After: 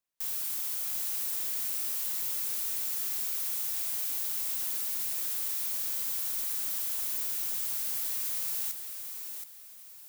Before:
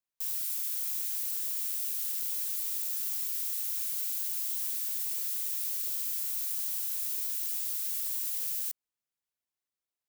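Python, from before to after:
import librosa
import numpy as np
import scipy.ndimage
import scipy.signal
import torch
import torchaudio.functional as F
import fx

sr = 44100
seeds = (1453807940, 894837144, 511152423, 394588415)

y = np.clip(x, -10.0 ** (-33.0 / 20.0), 10.0 ** (-33.0 / 20.0))
y = fx.echo_feedback(y, sr, ms=724, feedback_pct=33, wet_db=-7.0)
y = y * librosa.db_to_amplitude(2.5)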